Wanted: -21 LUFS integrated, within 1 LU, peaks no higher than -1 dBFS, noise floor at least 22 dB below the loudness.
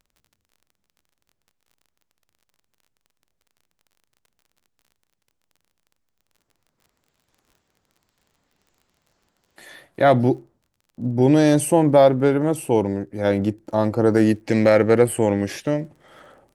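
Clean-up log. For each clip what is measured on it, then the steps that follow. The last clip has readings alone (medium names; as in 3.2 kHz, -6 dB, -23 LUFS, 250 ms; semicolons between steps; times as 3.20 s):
tick rate 32 per s; loudness -19.0 LUFS; peak level -2.5 dBFS; loudness target -21.0 LUFS
-> de-click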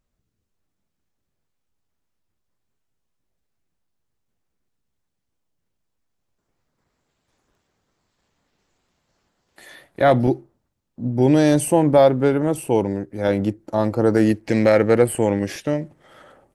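tick rate 0.12 per s; loudness -19.0 LUFS; peak level -2.5 dBFS; loudness target -21.0 LUFS
-> trim -2 dB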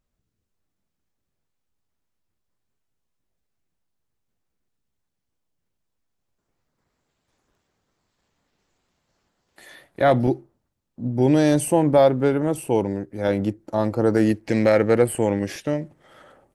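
loudness -21.0 LUFS; peak level -4.5 dBFS; noise floor -78 dBFS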